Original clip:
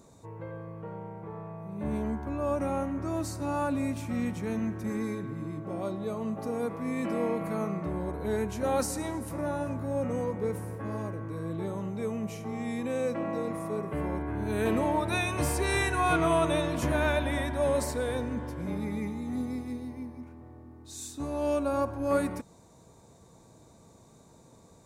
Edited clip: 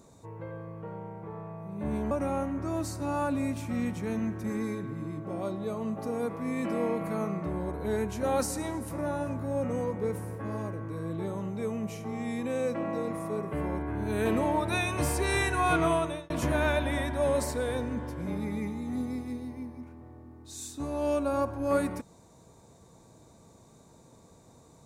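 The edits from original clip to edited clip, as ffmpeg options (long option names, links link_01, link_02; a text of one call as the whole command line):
ffmpeg -i in.wav -filter_complex "[0:a]asplit=3[link_01][link_02][link_03];[link_01]atrim=end=2.112[link_04];[link_02]atrim=start=2.508:end=16.7,asetpts=PTS-STARTPTS,afade=type=out:start_time=13.762:duration=0.43[link_05];[link_03]atrim=start=16.7,asetpts=PTS-STARTPTS,afade=type=in:duration=0.004:curve=hsin[link_06];[link_05][link_06]concat=n=2:v=0:a=1[link_07];[link_04][link_07]acrossfade=duration=0.004:curve1=hsin:curve2=hsin" out.wav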